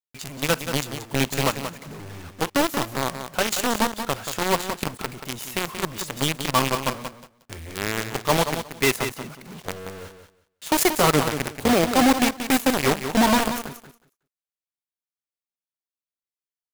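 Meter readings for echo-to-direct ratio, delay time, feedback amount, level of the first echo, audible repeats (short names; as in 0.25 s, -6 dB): -9.0 dB, 0.181 s, 17%, -9.0 dB, 2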